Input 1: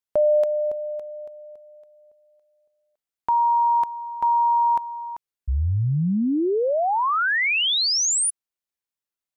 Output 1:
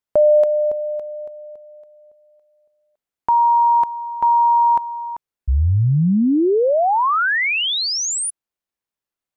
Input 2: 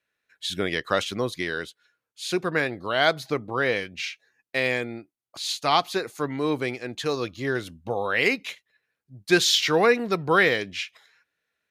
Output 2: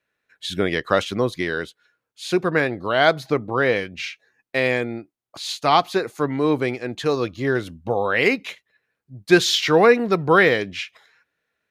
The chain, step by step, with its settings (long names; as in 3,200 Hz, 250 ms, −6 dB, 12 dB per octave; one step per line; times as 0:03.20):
high-shelf EQ 2,200 Hz −7.5 dB
level +6 dB